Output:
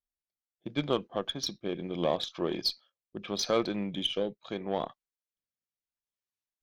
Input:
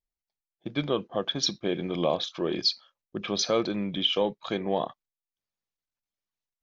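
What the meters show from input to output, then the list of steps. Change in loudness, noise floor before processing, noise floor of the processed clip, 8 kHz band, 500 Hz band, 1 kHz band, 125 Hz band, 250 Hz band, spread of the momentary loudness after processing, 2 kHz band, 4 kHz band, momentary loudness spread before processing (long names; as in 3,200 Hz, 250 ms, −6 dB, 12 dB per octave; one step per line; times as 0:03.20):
−4.0 dB, below −85 dBFS, below −85 dBFS, can't be measured, −3.5 dB, −3.0 dB, −3.5 dB, −3.5 dB, 11 LU, −4.0 dB, −5.5 dB, 10 LU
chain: rotating-speaker cabinet horn 0.75 Hz
harmonic generator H 2 −27 dB, 3 −22 dB, 6 −38 dB, 7 −35 dB, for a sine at −13.5 dBFS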